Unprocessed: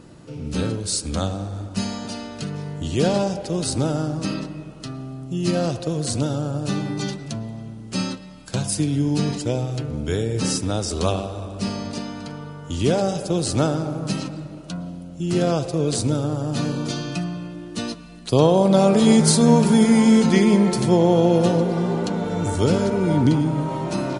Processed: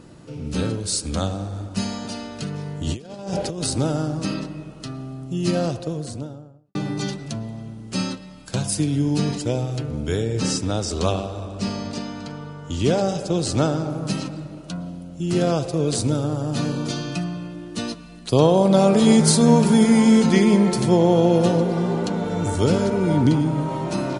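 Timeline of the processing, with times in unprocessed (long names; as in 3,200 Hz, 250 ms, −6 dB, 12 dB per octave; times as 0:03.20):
0:02.87–0:03.67: compressor whose output falls as the input rises −27 dBFS, ratio −0.5
0:05.46–0:06.75: fade out and dull
0:10.20–0:13.90: low-pass filter 8,700 Hz 24 dB per octave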